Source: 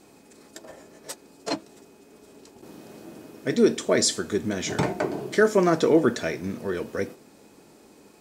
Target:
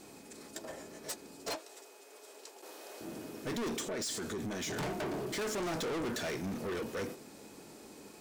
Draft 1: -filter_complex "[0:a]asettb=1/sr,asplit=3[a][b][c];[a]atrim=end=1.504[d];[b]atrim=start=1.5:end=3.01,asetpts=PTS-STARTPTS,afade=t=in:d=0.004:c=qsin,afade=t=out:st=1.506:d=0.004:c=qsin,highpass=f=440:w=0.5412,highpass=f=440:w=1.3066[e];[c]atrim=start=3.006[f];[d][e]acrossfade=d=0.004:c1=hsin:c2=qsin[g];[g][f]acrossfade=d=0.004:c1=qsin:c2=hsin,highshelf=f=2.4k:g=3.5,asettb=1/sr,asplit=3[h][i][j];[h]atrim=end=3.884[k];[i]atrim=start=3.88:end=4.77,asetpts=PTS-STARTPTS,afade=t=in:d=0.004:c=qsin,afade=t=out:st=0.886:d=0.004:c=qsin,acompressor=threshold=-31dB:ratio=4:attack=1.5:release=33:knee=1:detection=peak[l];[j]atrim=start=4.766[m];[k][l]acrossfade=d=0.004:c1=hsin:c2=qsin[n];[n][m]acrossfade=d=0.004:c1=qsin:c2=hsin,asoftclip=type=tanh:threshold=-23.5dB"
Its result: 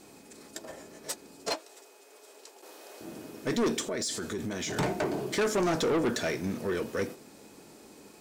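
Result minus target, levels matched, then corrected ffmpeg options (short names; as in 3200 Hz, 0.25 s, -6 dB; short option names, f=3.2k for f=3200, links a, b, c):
soft clip: distortion -5 dB
-filter_complex "[0:a]asettb=1/sr,asplit=3[a][b][c];[a]atrim=end=1.504[d];[b]atrim=start=1.5:end=3.01,asetpts=PTS-STARTPTS,afade=t=in:d=0.004:c=qsin,afade=t=out:st=1.506:d=0.004:c=qsin,highpass=f=440:w=0.5412,highpass=f=440:w=1.3066[e];[c]atrim=start=3.006[f];[d][e]acrossfade=d=0.004:c1=hsin:c2=qsin[g];[g][f]acrossfade=d=0.004:c1=qsin:c2=hsin,highshelf=f=2.4k:g=3.5,asettb=1/sr,asplit=3[h][i][j];[h]atrim=end=3.884[k];[i]atrim=start=3.88:end=4.77,asetpts=PTS-STARTPTS,afade=t=in:d=0.004:c=qsin,afade=t=out:st=0.886:d=0.004:c=qsin,acompressor=threshold=-31dB:ratio=4:attack=1.5:release=33:knee=1:detection=peak[l];[j]atrim=start=4.766[m];[k][l]acrossfade=d=0.004:c1=hsin:c2=qsin[n];[n][m]acrossfade=d=0.004:c1=qsin:c2=hsin,asoftclip=type=tanh:threshold=-34dB"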